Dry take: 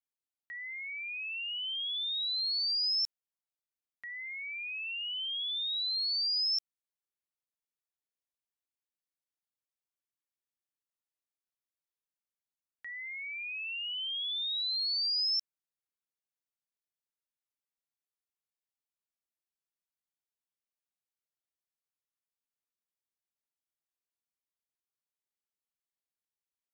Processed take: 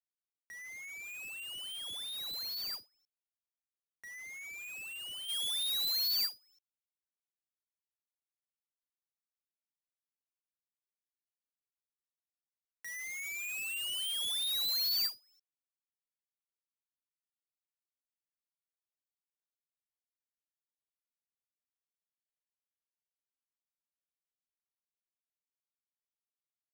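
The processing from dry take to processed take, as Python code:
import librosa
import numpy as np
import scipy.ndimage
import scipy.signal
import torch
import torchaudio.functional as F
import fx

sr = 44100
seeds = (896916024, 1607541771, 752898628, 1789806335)

y = fx.halfwave_hold(x, sr)
y = fx.high_shelf(y, sr, hz=2100.0, db=fx.steps((0.0, -5.5), (5.28, 3.5)))
y = np.where(np.abs(y) >= 10.0 ** (-48.5 / 20.0), y, 0.0)
y = fx.end_taper(y, sr, db_per_s=270.0)
y = y * 10.0 ** (-5.5 / 20.0)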